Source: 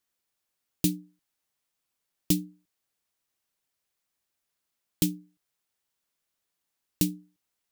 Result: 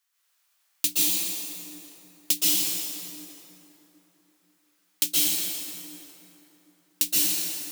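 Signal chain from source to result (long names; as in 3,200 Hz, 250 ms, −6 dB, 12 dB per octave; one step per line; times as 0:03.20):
high-pass filter 1,000 Hz 12 dB per octave
dense smooth reverb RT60 3.5 s, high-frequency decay 0.55×, pre-delay 110 ms, DRR −9 dB
level +5.5 dB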